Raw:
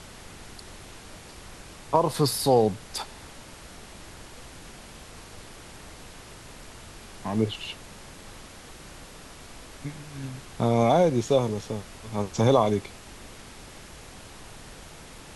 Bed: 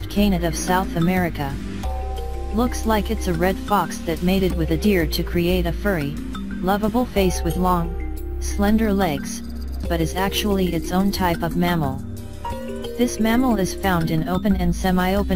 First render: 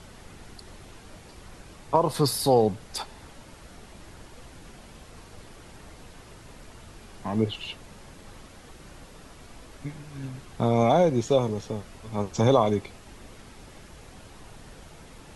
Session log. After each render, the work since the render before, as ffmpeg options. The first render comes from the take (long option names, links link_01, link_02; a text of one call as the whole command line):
ffmpeg -i in.wav -af "afftdn=noise_reduction=6:noise_floor=-46" out.wav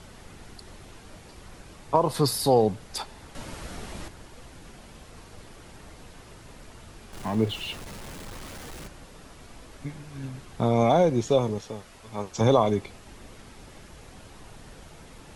ffmpeg -i in.wav -filter_complex "[0:a]asettb=1/sr,asplit=3[link_01][link_02][link_03];[link_01]atrim=end=7.134[link_04];[link_02]atrim=start=7.13:end=8.88,asetpts=PTS-STARTPTS,afade=type=in:duration=0.004:curve=qsin,afade=type=out:start_time=1.746:duration=0.004:curve=qsin,aeval=exprs='val(0)+0.5*0.0119*sgn(val(0))':channel_layout=same[link_05];[link_03]atrim=start=8.876[link_06];[link_04][link_05]acrossfade=duration=0.004:curve1=hsin:curve2=qsin[link_07];[link_07][link_06]acrossfade=duration=0.004:curve1=qsin:curve2=hsin,asettb=1/sr,asplit=3[link_08][link_09][link_10];[link_08]atrim=end=11.584[link_11];[link_09]atrim=start=11.58:end=12.41,asetpts=PTS-STARTPTS,afade=type=in:duration=0.004:curve=qsin,afade=type=out:start_time=0.826:duration=0.004:curve=qsin,lowshelf=frequency=390:gain=-8[link_12];[link_10]atrim=start=12.406[link_13];[link_11][link_12]acrossfade=duration=0.004:curve1=hsin:curve2=qsin[link_14];[link_14][link_13]acrossfade=duration=0.004:curve1=qsin:curve2=hsin,asplit=3[link_15][link_16][link_17];[link_15]atrim=end=3.352[link_18];[link_16]atrim=start=3.348:end=4.082,asetpts=PTS-STARTPTS,volume=8.5dB[link_19];[link_17]atrim=start=4.078[link_20];[link_18][link_19]acrossfade=duration=0.004:curve1=hsin:curve2=hsin[link_21];[link_21][link_20]acrossfade=duration=0.004:curve1=hsin:curve2=hsin" out.wav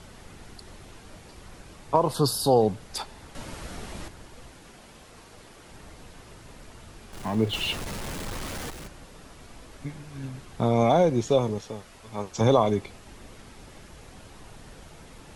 ffmpeg -i in.wav -filter_complex "[0:a]asettb=1/sr,asplit=3[link_01][link_02][link_03];[link_01]atrim=end=2.144[link_04];[link_02]atrim=start=2.14:end=2.62,asetpts=PTS-STARTPTS,afade=type=in:duration=0.004:curve=qsin,afade=type=out:start_time=0.476:duration=0.004:curve=qsin,asuperstop=centerf=2100:order=8:qfactor=1.9[link_05];[link_03]atrim=start=2.616[link_06];[link_04][link_05]acrossfade=duration=0.004:curve1=hsin:curve2=qsin[link_07];[link_07][link_06]acrossfade=duration=0.004:curve1=qsin:curve2=hsin,asettb=1/sr,asplit=3[link_08][link_09][link_10];[link_08]atrim=end=4.514[link_11];[link_09]atrim=start=4.51:end=5.7,asetpts=PTS-STARTPTS,afade=type=in:duration=0.004:curve=qsin,afade=type=out:start_time=1.186:duration=0.004:curve=qsin,lowshelf=frequency=160:gain=-8[link_12];[link_10]atrim=start=5.696[link_13];[link_11][link_12]acrossfade=duration=0.004:curve1=hsin:curve2=qsin[link_14];[link_14][link_13]acrossfade=duration=0.004:curve1=qsin:curve2=hsin,asplit=3[link_15][link_16][link_17];[link_15]atrim=end=7.532[link_18];[link_16]atrim=start=7.528:end=8.702,asetpts=PTS-STARTPTS,volume=6dB[link_19];[link_17]atrim=start=8.698[link_20];[link_18][link_19]acrossfade=duration=0.004:curve1=hsin:curve2=hsin[link_21];[link_21][link_20]acrossfade=duration=0.004:curve1=hsin:curve2=hsin" out.wav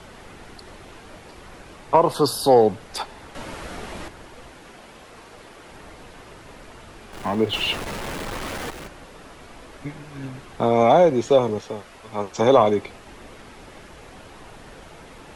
ffmpeg -i in.wav -filter_complex "[0:a]acrossover=split=260|3400[link_01][link_02][link_03];[link_01]alimiter=level_in=3dB:limit=-24dB:level=0:latency=1,volume=-3dB[link_04];[link_02]acontrast=79[link_05];[link_04][link_05][link_03]amix=inputs=3:normalize=0" out.wav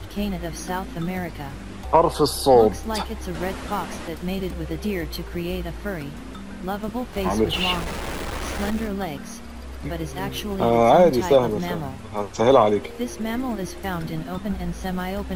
ffmpeg -i in.wav -i bed.wav -filter_complex "[1:a]volume=-8.5dB[link_01];[0:a][link_01]amix=inputs=2:normalize=0" out.wav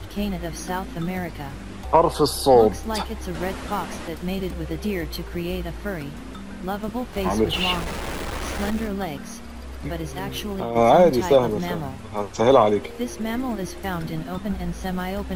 ffmpeg -i in.wav -filter_complex "[0:a]asplit=3[link_01][link_02][link_03];[link_01]afade=type=out:start_time=9.97:duration=0.02[link_04];[link_02]acompressor=threshold=-23dB:ratio=6:attack=3.2:release=140:knee=1:detection=peak,afade=type=in:start_time=9.97:duration=0.02,afade=type=out:start_time=10.75:duration=0.02[link_05];[link_03]afade=type=in:start_time=10.75:duration=0.02[link_06];[link_04][link_05][link_06]amix=inputs=3:normalize=0" out.wav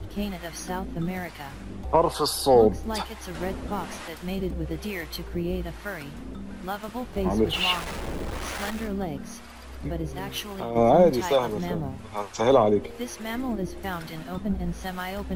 ffmpeg -i in.wav -filter_complex "[0:a]acrossover=split=670[link_01][link_02];[link_01]aeval=exprs='val(0)*(1-0.7/2+0.7/2*cos(2*PI*1.1*n/s))':channel_layout=same[link_03];[link_02]aeval=exprs='val(0)*(1-0.7/2-0.7/2*cos(2*PI*1.1*n/s))':channel_layout=same[link_04];[link_03][link_04]amix=inputs=2:normalize=0" out.wav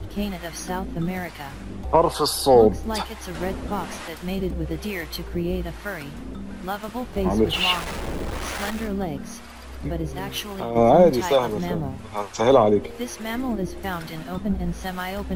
ffmpeg -i in.wav -af "volume=3dB" out.wav